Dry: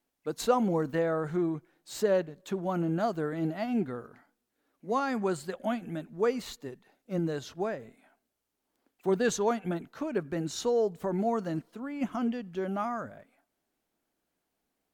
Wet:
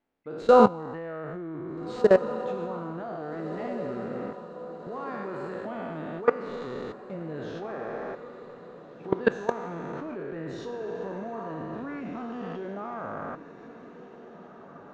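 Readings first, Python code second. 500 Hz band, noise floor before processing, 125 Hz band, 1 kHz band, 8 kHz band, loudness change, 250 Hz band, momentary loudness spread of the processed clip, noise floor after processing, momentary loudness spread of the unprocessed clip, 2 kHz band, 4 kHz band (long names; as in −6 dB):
+3.5 dB, −83 dBFS, −3.0 dB, +3.5 dB, below −15 dB, +1.5 dB, −1.0 dB, 22 LU, −48 dBFS, 11 LU, +2.5 dB, −4.5 dB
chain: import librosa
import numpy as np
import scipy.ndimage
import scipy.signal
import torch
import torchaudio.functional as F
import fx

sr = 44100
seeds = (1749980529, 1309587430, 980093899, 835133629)

y = fx.spec_trails(x, sr, decay_s=1.53)
y = fx.level_steps(y, sr, step_db=22)
y = scipy.signal.sosfilt(scipy.signal.butter(2, 2400.0, 'lowpass', fs=sr, output='sos'), y)
y = fx.echo_diffused(y, sr, ms=1742, feedback_pct=57, wet_db=-13.0)
y = y * librosa.db_to_amplitude(8.0)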